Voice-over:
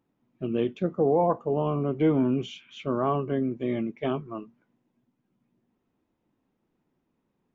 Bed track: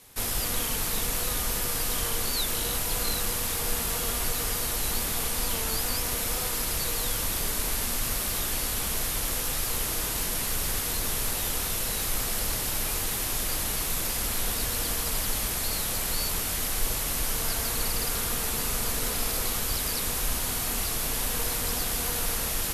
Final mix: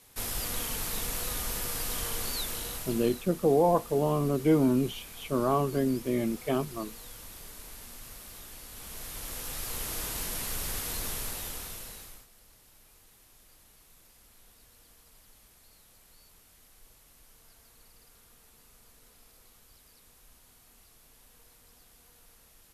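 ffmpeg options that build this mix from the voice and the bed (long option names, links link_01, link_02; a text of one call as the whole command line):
ffmpeg -i stem1.wav -i stem2.wav -filter_complex "[0:a]adelay=2450,volume=-0.5dB[link_01];[1:a]volume=7dB,afade=type=out:start_time=2.3:duration=0.94:silence=0.237137,afade=type=in:start_time=8.68:duration=1.32:silence=0.251189,afade=type=out:start_time=11.04:duration=1.23:silence=0.0595662[link_02];[link_01][link_02]amix=inputs=2:normalize=0" out.wav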